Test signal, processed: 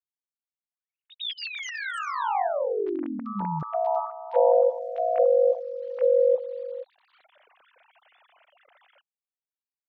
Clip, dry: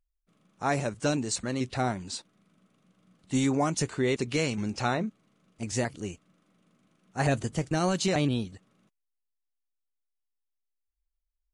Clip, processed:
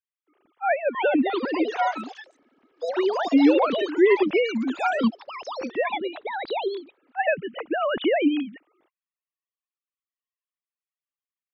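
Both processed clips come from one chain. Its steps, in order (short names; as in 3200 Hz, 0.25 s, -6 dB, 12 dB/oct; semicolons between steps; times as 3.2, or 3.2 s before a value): sine-wave speech; echoes that change speed 0.477 s, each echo +5 st, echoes 3, each echo -6 dB; gain +5.5 dB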